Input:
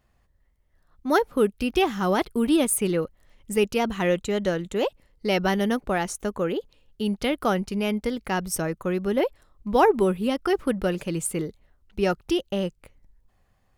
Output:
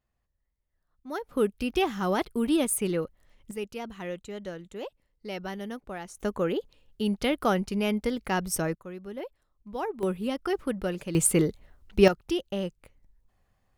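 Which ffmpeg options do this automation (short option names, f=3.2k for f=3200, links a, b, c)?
-af "asetnsamples=n=441:p=0,asendcmd='1.29 volume volume -4dB;3.51 volume volume -13dB;6.17 volume volume -1.5dB;8.75 volume volume -14.5dB;10.03 volume volume -5.5dB;11.15 volume volume 5.5dB;12.08 volume volume -4.5dB',volume=-14dB"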